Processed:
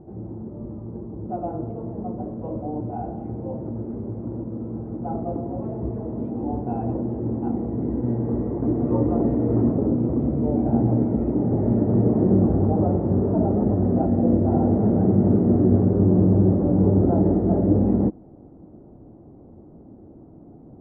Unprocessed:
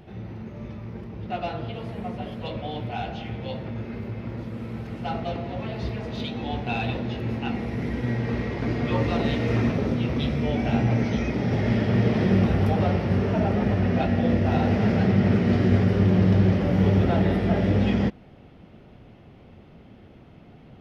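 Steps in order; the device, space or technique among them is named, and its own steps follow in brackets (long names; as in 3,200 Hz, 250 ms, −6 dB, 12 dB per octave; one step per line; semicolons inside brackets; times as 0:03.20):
under water (low-pass filter 910 Hz 24 dB per octave; parametric band 310 Hz +10 dB 0.56 octaves)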